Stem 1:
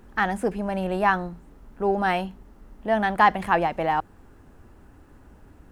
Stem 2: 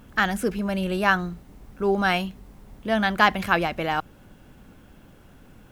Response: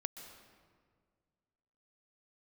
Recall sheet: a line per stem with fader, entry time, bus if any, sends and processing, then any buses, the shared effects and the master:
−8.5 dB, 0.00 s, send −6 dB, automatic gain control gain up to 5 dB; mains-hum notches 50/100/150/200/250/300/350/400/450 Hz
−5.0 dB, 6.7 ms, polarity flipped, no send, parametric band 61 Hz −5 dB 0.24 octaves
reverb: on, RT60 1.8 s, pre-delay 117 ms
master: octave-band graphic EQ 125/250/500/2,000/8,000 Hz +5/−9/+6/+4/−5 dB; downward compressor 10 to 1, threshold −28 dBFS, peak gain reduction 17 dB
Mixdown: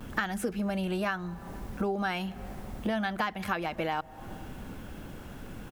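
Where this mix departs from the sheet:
stem 2 −5.0 dB → +7.0 dB
master: missing octave-band graphic EQ 125/250/500/2,000/8,000 Hz +5/−9/+6/+4/−5 dB

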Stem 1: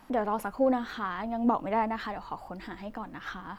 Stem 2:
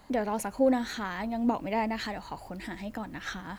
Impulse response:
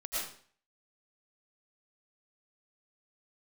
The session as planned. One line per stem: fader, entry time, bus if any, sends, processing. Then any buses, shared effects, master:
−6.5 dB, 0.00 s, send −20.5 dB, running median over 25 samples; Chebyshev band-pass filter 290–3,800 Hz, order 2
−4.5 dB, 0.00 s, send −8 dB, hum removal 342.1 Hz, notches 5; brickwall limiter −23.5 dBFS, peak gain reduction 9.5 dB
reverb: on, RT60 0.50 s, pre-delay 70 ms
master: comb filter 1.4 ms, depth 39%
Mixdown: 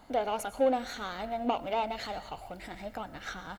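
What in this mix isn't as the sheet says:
stem 1 −6.5 dB → +0.5 dB
reverb return −7.5 dB

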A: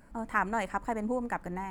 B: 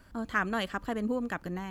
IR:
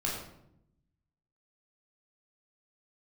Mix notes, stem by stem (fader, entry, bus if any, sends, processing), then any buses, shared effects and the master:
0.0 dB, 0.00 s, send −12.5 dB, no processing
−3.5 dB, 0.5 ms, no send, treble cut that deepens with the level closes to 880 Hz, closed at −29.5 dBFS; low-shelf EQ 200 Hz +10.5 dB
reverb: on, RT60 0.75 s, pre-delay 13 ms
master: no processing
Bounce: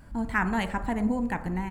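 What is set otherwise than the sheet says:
stem B: missing treble cut that deepens with the level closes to 880 Hz, closed at −29.5 dBFS
master: extra low-shelf EQ 180 Hz +3.5 dB

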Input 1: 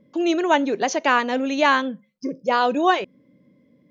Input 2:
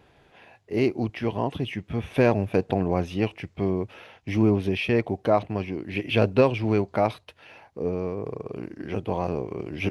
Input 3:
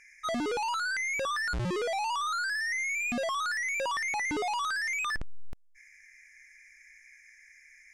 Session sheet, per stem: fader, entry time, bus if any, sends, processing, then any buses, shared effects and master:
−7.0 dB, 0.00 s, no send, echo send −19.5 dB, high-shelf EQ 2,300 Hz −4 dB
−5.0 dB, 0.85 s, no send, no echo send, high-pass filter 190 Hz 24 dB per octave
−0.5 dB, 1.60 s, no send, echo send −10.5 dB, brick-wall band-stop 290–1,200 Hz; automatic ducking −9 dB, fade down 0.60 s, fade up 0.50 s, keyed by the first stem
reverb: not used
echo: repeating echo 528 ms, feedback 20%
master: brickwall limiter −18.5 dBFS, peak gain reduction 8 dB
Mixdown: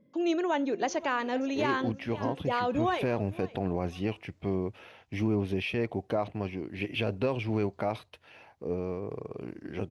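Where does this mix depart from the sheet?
stem 2: missing high-pass filter 190 Hz 24 dB per octave
stem 3: muted

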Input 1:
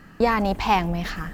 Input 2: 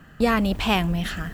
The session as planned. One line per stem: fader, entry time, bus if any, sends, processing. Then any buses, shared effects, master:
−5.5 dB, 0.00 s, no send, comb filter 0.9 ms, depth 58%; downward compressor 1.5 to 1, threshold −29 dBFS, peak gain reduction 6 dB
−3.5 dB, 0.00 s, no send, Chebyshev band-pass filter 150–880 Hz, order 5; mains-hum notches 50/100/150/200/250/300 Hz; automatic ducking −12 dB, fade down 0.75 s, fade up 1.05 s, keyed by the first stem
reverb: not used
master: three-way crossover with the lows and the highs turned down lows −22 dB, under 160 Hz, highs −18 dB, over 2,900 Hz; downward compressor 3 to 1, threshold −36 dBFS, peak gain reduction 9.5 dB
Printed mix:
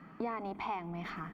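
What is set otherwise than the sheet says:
as on the sheet

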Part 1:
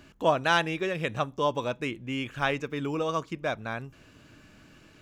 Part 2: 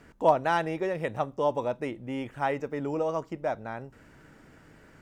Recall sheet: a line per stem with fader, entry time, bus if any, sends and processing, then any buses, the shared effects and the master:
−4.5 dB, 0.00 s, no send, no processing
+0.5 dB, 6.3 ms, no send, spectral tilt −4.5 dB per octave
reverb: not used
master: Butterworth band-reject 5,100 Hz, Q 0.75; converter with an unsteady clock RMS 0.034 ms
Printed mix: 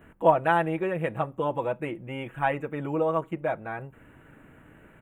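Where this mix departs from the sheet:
stem 2: missing spectral tilt −4.5 dB per octave
master: missing converter with an unsteady clock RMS 0.034 ms

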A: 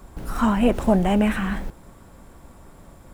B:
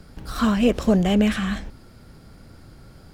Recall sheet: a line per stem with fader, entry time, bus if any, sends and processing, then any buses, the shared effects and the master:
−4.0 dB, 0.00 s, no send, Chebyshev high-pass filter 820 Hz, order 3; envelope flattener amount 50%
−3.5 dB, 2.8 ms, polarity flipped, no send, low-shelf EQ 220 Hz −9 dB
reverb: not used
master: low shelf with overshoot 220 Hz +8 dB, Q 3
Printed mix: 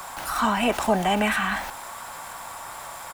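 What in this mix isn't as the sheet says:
stem A −4.0 dB → +2.0 dB
master: missing low shelf with overshoot 220 Hz +8 dB, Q 3

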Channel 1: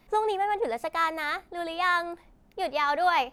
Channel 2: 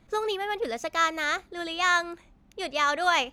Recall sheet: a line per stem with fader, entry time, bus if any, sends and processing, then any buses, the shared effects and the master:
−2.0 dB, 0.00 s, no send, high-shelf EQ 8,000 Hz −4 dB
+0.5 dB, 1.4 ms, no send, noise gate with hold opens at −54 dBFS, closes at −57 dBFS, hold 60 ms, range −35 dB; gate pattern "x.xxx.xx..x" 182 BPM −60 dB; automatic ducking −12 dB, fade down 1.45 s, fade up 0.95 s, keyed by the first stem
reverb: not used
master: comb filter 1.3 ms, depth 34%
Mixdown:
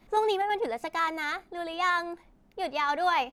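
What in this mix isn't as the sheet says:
stem 2: polarity flipped
master: missing comb filter 1.3 ms, depth 34%

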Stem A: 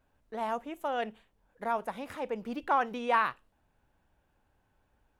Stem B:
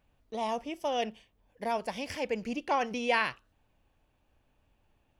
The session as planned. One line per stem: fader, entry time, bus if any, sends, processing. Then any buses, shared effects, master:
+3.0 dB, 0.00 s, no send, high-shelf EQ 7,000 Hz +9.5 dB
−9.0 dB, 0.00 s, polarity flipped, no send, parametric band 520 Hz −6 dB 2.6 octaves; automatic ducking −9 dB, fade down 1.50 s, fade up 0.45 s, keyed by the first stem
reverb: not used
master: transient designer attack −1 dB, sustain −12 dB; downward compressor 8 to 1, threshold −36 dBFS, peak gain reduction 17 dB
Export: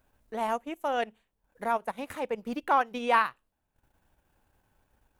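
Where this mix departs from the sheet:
stem B: polarity flipped
master: missing downward compressor 8 to 1, threshold −36 dBFS, peak gain reduction 17 dB

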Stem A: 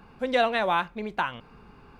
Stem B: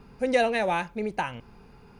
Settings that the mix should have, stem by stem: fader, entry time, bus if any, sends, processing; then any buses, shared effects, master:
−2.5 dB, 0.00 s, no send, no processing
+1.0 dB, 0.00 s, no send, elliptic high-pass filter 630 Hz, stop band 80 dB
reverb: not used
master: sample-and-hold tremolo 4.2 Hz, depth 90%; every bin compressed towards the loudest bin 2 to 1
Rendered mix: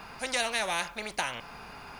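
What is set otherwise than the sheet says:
stem A −2.5 dB → −13.5 dB
master: missing sample-and-hold tremolo 4.2 Hz, depth 90%

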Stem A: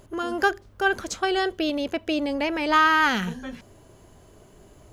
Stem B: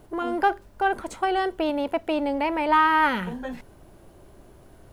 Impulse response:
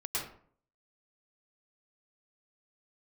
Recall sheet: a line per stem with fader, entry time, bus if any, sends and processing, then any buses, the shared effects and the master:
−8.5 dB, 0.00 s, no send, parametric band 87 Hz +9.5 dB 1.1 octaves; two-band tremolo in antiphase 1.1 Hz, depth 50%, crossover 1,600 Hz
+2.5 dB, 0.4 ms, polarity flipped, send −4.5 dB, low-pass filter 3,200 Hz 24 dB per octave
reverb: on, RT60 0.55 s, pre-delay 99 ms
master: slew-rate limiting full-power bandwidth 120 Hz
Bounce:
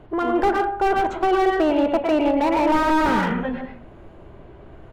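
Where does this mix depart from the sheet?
stem A −8.5 dB → −17.0 dB
stem B: polarity flipped

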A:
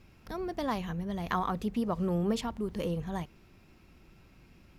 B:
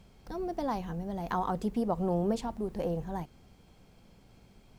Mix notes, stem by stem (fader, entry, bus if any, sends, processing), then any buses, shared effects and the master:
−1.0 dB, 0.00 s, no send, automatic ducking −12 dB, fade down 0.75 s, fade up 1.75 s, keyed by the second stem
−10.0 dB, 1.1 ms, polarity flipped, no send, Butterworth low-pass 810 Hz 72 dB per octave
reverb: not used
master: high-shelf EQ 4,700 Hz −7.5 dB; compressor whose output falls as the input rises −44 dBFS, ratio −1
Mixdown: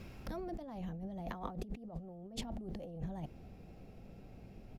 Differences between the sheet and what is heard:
stem B −10.0 dB → −3.0 dB
master: missing high-shelf EQ 4,700 Hz −7.5 dB

